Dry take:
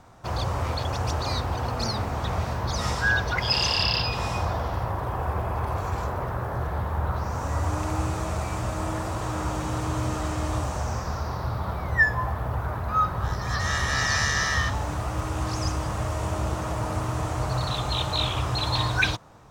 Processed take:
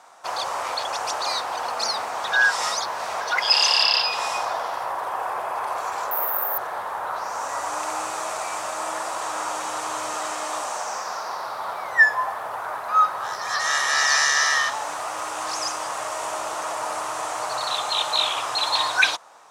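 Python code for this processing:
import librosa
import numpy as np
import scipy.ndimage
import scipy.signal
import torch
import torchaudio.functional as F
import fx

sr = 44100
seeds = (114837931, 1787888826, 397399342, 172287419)

y = fx.resample_bad(x, sr, factor=3, down='filtered', up='zero_stuff', at=(6.11, 6.58))
y = fx.highpass(y, sr, hz=130.0, slope=12, at=(10.34, 11.6))
y = fx.edit(y, sr, fx.reverse_span(start_s=2.32, length_s=0.89), tone=tone)
y = scipy.signal.sosfilt(scipy.signal.cheby1(2, 1.0, [770.0, 9900.0], 'bandpass', fs=sr, output='sos'), y)
y = fx.high_shelf(y, sr, hz=9000.0, db=8.0)
y = y * librosa.db_to_amplitude(5.5)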